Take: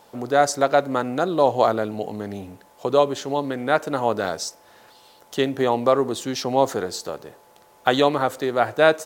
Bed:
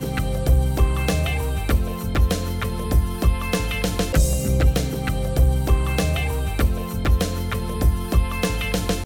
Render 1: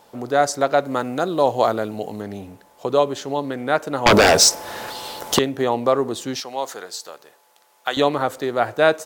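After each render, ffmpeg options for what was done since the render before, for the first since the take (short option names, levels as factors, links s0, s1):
-filter_complex "[0:a]asettb=1/sr,asplit=3[s0][s1][s2];[s0]atrim=end=0.864[s3];[s1]atrim=start=0.86:end=2.22,asetpts=PTS-STARTPTS,afade=t=in:d=0.004:c=qsin,afade=t=out:st=1.356:d=0.004:c=qsin,highshelf=f=5200:g=5.5[s4];[s2]atrim=start=2.216[s5];[s3][s4]acrossfade=d=0.004:c1=hsin:c2=qsin[s6];[s6][s5]acrossfade=d=0.004:c1=qsin:c2=hsin,asettb=1/sr,asplit=3[s7][s8][s9];[s7]atrim=end=4.064[s10];[s8]atrim=start=4.06:end=5.39,asetpts=PTS-STARTPTS,afade=t=in:d=0.004:c=qsin,afade=t=out:st=1.326:d=0.004:c=qsin,aeval=exprs='0.447*sin(PI/2*5.62*val(0)/0.447)':c=same[s11];[s9]atrim=start=5.386[s12];[s10][s11]acrossfade=d=0.004:c1=hsin:c2=qsin[s13];[s13][s12]acrossfade=d=0.004:c1=qsin:c2=hsin,asettb=1/sr,asplit=3[s14][s15][s16];[s14]atrim=end=6.404[s17];[s15]atrim=start=6.4:end=7.97,asetpts=PTS-STARTPTS,afade=t=in:d=0.004:c=qsin,afade=t=out:st=1.566:d=0.004:c=qsin,highpass=f=1400:p=1[s18];[s16]atrim=start=7.966[s19];[s17][s18]acrossfade=d=0.004:c1=hsin:c2=qsin[s20];[s20][s19]acrossfade=d=0.004:c1=qsin:c2=hsin"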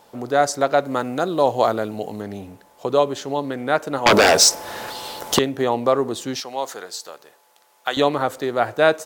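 -filter_complex "[0:a]asettb=1/sr,asplit=3[s0][s1][s2];[s0]atrim=end=3.984[s3];[s1]atrim=start=3.98:end=4.5,asetpts=PTS-STARTPTS,afade=t=in:d=0.004:c=qsin,afade=t=out:st=0.516:d=0.004:c=qsin,lowshelf=f=130:g=-10.5[s4];[s2]atrim=start=4.496[s5];[s3][s4]acrossfade=d=0.004:c1=hsin:c2=qsin[s6];[s6][s5]acrossfade=d=0.004:c1=qsin:c2=hsin"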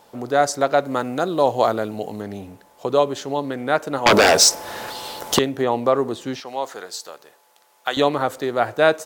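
-filter_complex "[0:a]asettb=1/sr,asplit=3[s0][s1][s2];[s0]atrim=end=5.584[s3];[s1]atrim=start=5.58:end=6.89,asetpts=PTS-STARTPTS,afade=t=in:d=0.004:c=qsin,afade=t=out:st=1.306:d=0.004:c=qsin,acrossover=split=3200[s4][s5];[s5]acompressor=threshold=0.00891:ratio=4:attack=1:release=60[s6];[s4][s6]amix=inputs=2:normalize=0[s7];[s2]atrim=start=6.886[s8];[s3][s7]acrossfade=d=0.004:c1=hsin:c2=qsin[s9];[s9][s8]acrossfade=d=0.004:c1=qsin:c2=hsin"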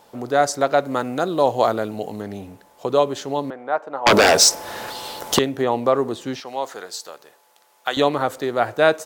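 -filter_complex "[0:a]asettb=1/sr,asplit=3[s0][s1][s2];[s0]atrim=end=3.504[s3];[s1]atrim=start=3.5:end=4.07,asetpts=PTS-STARTPTS,afade=t=in:d=0.004:c=qsin,afade=t=out:st=0.566:d=0.004:c=qsin,bandpass=f=840:t=q:w=1.4[s4];[s2]atrim=start=4.066[s5];[s3][s4]acrossfade=d=0.004:c1=hsin:c2=qsin[s6];[s6][s5]acrossfade=d=0.004:c1=qsin:c2=hsin"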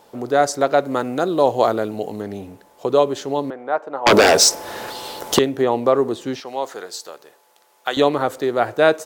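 -af "equalizer=f=380:t=o:w=0.96:g=4"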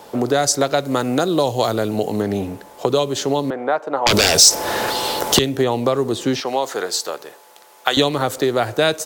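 -filter_complex "[0:a]acrossover=split=140|3000[s0][s1][s2];[s1]acompressor=threshold=0.0501:ratio=6[s3];[s0][s3][s2]amix=inputs=3:normalize=0,alimiter=level_in=3.16:limit=0.891:release=50:level=0:latency=1"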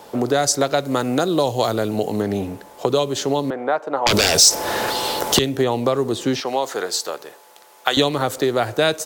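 -af "volume=0.891,alimiter=limit=0.708:level=0:latency=1"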